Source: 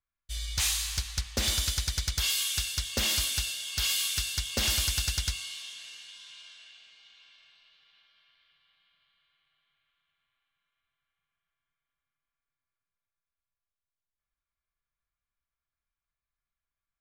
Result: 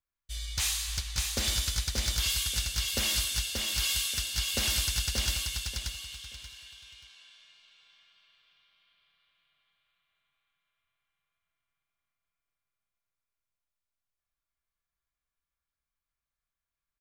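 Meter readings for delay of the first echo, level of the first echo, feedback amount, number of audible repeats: 582 ms, -4.0 dB, 24%, 3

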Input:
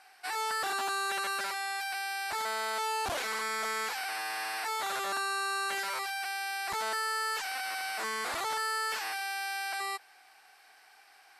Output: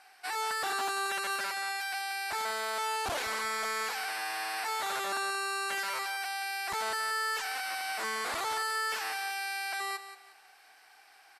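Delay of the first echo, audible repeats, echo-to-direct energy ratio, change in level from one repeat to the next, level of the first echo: 179 ms, 3, -11.5 dB, -11.0 dB, -12.0 dB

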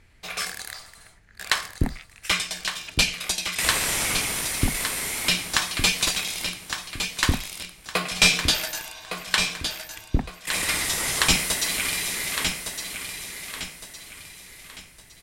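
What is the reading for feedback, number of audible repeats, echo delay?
36%, 4, 1161 ms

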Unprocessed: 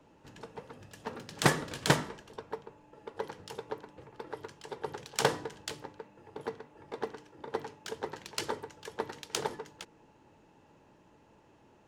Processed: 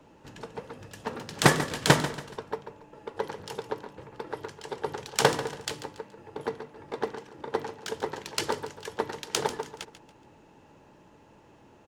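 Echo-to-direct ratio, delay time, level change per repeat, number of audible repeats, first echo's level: -12.5 dB, 141 ms, -9.0 dB, 3, -13.0 dB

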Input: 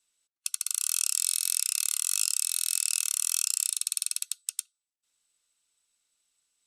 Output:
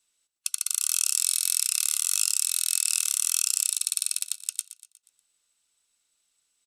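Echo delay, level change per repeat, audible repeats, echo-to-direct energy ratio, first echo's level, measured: 120 ms, -6.0 dB, 4, -13.5 dB, -14.5 dB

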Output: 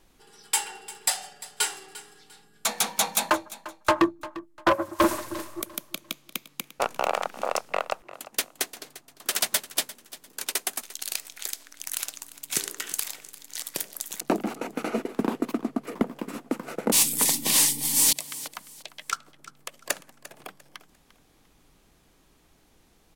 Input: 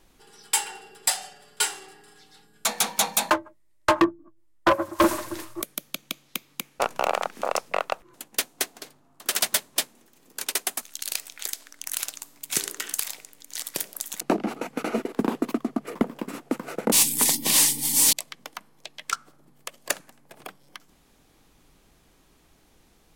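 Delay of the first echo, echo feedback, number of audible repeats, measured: 348 ms, 28%, 2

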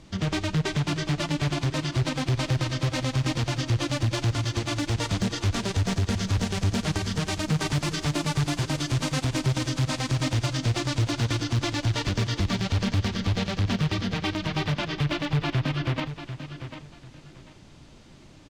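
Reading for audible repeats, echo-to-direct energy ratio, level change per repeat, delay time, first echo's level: 2, -10.5 dB, -12.5 dB, 744 ms, -11.0 dB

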